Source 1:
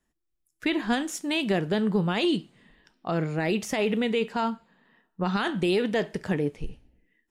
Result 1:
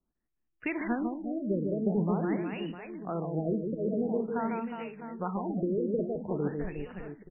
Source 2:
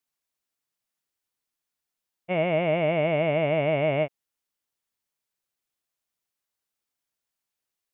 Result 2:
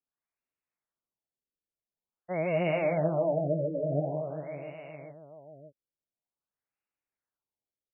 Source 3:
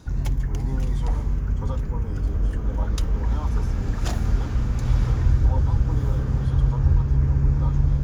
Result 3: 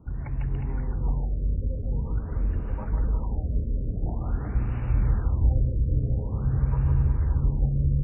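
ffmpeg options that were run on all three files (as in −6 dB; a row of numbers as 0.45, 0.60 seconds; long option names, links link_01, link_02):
-filter_complex "[0:a]acrossover=split=510[link_01][link_02];[link_01]aeval=exprs='val(0)*(1-0.5/2+0.5/2*cos(2*PI*2*n/s))':channel_layout=same[link_03];[link_02]aeval=exprs='val(0)*(1-0.5/2-0.5/2*cos(2*PI*2*n/s))':channel_layout=same[link_04];[link_03][link_04]amix=inputs=2:normalize=0,aecho=1:1:150|360|654|1066|1642:0.631|0.398|0.251|0.158|0.1,afftfilt=real='re*lt(b*sr/1024,600*pow(3000/600,0.5+0.5*sin(2*PI*0.47*pts/sr)))':imag='im*lt(b*sr/1024,600*pow(3000/600,0.5+0.5*sin(2*PI*0.47*pts/sr)))':win_size=1024:overlap=0.75,volume=-3.5dB"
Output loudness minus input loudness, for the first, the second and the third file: −5.5, −5.5, −3.5 LU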